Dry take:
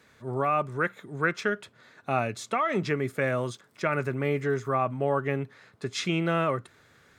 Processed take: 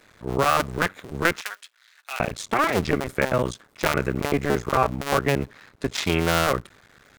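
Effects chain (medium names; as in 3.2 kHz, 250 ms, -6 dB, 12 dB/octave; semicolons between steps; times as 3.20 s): cycle switcher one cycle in 2, muted; 1.41–2.20 s: Bessel high-pass 2.6 kHz, order 2; trim +7.5 dB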